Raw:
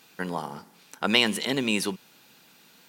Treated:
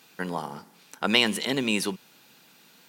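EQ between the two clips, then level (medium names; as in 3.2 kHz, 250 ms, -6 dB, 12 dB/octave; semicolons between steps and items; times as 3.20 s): high-pass 71 Hz; 0.0 dB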